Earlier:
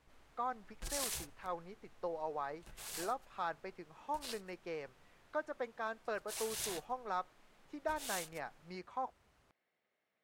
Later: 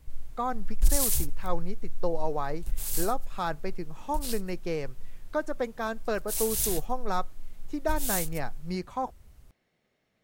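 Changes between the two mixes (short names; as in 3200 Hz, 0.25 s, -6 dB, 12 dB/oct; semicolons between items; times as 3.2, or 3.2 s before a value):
speech +6.5 dB; master: remove band-pass 1300 Hz, Q 0.54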